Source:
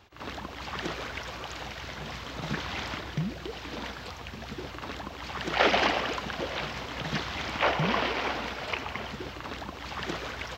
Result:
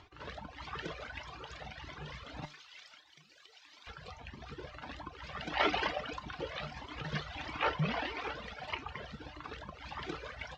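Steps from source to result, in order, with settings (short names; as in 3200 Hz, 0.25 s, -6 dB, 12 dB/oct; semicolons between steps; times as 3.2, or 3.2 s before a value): reverb removal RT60 1 s; 2.45–3.87 differentiator; upward compressor, threshold -47 dBFS; air absorption 91 m; resonator 150 Hz, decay 0.26 s, harmonics all, mix 60%; cascading flanger rising 1.6 Hz; gain +5 dB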